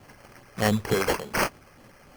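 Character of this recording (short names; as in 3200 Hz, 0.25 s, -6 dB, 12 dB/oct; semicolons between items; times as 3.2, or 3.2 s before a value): phasing stages 12, 3.4 Hz, lowest notch 240–3800 Hz; aliases and images of a low sample rate 3700 Hz, jitter 0%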